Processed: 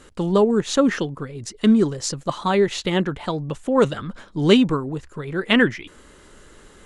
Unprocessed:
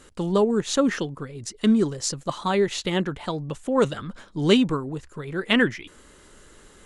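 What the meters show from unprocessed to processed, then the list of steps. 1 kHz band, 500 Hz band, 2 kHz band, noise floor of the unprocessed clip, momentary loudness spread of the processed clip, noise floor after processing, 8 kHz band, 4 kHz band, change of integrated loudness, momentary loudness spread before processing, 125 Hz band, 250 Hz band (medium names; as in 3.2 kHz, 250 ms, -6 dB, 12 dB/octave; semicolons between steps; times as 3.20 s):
+3.5 dB, +3.5 dB, +3.0 dB, -52 dBFS, 14 LU, -49 dBFS, 0.0 dB, +2.0 dB, +3.5 dB, 14 LU, +3.5 dB, +3.5 dB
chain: treble shelf 5 kHz -5 dB; trim +3.5 dB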